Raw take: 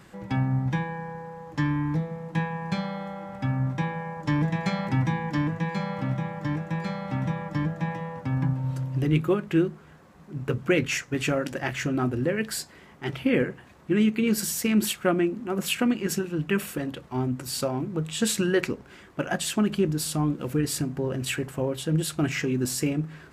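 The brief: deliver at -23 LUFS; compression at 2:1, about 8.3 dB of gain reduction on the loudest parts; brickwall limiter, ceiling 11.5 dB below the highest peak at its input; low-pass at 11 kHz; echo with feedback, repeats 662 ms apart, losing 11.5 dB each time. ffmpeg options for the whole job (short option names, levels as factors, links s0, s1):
-af "lowpass=11000,acompressor=threshold=0.0224:ratio=2,alimiter=level_in=1.58:limit=0.0631:level=0:latency=1,volume=0.631,aecho=1:1:662|1324|1986:0.266|0.0718|0.0194,volume=5.01"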